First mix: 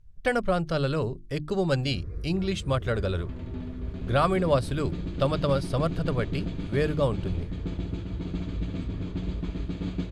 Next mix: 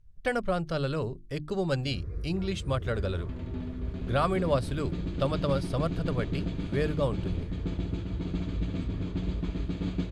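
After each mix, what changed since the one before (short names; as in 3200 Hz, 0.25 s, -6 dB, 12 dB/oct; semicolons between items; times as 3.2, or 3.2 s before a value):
speech -3.5 dB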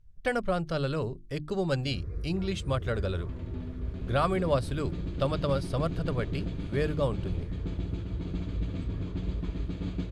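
second sound -3.5 dB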